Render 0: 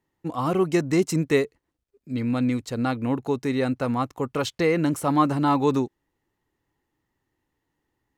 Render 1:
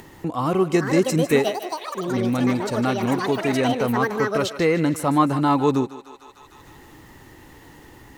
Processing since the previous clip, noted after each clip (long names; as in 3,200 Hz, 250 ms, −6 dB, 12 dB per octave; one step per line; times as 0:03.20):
delay with pitch and tempo change per echo 568 ms, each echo +7 semitones, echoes 3, each echo −6 dB
feedback echo with a high-pass in the loop 152 ms, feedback 47%, high-pass 580 Hz, level −12.5 dB
upward compression, threshold −24 dBFS
level +2 dB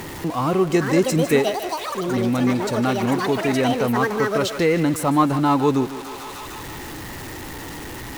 converter with a step at zero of −29.5 dBFS